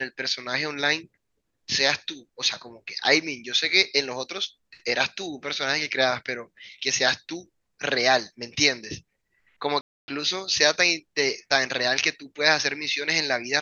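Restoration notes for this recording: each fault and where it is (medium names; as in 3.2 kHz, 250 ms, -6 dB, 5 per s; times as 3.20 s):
9.81–10.08 s: dropout 270 ms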